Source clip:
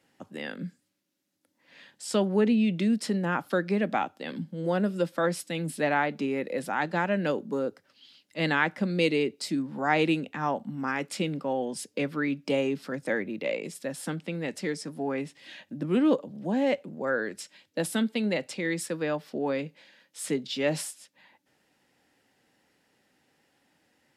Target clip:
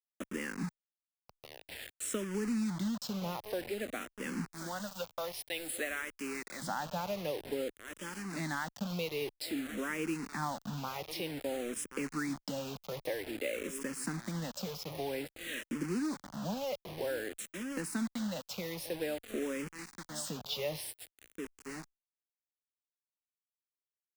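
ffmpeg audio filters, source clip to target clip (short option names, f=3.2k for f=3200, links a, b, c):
-filter_complex "[0:a]asplit=2[a][b];[b]adelay=1079,lowpass=f=2k:p=1,volume=-19dB,asplit=2[c][d];[d]adelay=1079,lowpass=f=2k:p=1,volume=0.2[e];[a][c][e]amix=inputs=3:normalize=0,acrusher=bits=6:mode=log:mix=0:aa=0.000001,asettb=1/sr,asplit=3[f][g][h];[f]atrim=end=4.524[i];[g]atrim=start=4.52:end=6.62,asetpts=PTS-STARTPTS,afade=t=in:d=0.004:c=qsin,afade=t=out:st=2.096:d=0.004:c=qsin,highpass=f=1.1k:p=1[j];[h]atrim=start=6.616[k];[i][j]acrossfade=d=0.004:c1=hsin:c2=qsin[l];[l][k]acrossfade=d=0.004:c1=qsin:c2=hsin,acompressor=threshold=-42dB:ratio=4,acrusher=bits=7:mix=0:aa=0.000001,asplit=2[m][n];[n]afreqshift=-0.52[o];[m][o]amix=inputs=2:normalize=1,volume=7.5dB"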